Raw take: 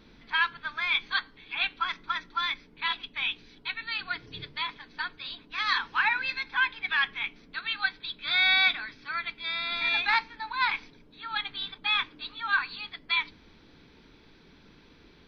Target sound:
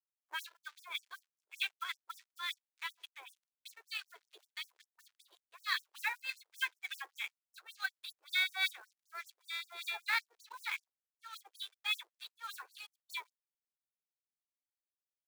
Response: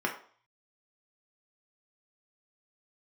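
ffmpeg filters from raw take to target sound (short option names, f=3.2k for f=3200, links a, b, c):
-filter_complex "[0:a]asplit=2[a][b];[1:a]atrim=start_sample=2205,lowshelf=f=140:g=-4[c];[b][c]afir=irnorm=-1:irlink=0,volume=-23.5dB[d];[a][d]amix=inputs=2:normalize=0,aeval=exprs='sgn(val(0))*max(abs(val(0))-0.00668,0)':c=same,bandreject=f=50:t=h:w=6,bandreject=f=100:t=h:w=6,bandreject=f=150:t=h:w=6,bandreject=f=200:t=h:w=6,acrossover=split=1100[e][f];[e]aeval=exprs='val(0)*(1-1/2+1/2*cos(2*PI*3.4*n/s))':c=same[g];[f]aeval=exprs='val(0)*(1-1/2-1/2*cos(2*PI*3.4*n/s))':c=same[h];[g][h]amix=inputs=2:normalize=0,lowshelf=f=270:g=8.5,acrusher=bits=4:mode=log:mix=0:aa=0.000001,afftfilt=real='re*gte(b*sr/1024,310*pow(5400/310,0.5+0.5*sin(2*PI*5.2*pts/sr)))':imag='im*gte(b*sr/1024,310*pow(5400/310,0.5+0.5*sin(2*PI*5.2*pts/sr)))':win_size=1024:overlap=0.75,volume=-6dB"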